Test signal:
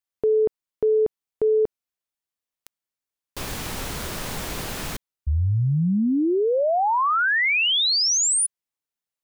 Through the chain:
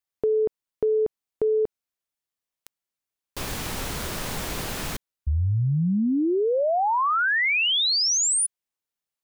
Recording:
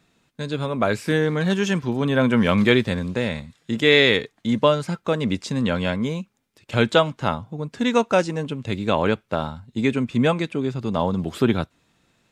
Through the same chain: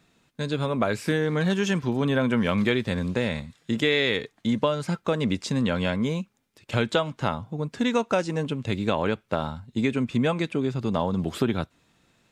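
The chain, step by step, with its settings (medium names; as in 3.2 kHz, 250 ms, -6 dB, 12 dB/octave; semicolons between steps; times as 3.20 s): compression 4:1, threshold -20 dBFS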